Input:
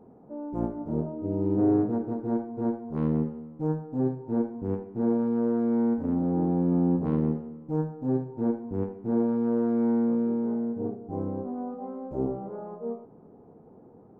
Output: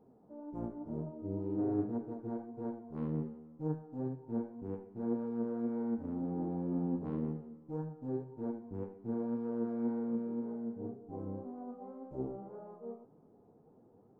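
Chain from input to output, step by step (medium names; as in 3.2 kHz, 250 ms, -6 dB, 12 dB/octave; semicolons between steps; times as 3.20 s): flange 1.9 Hz, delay 6.1 ms, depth 4.5 ms, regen +63%; trim -6.5 dB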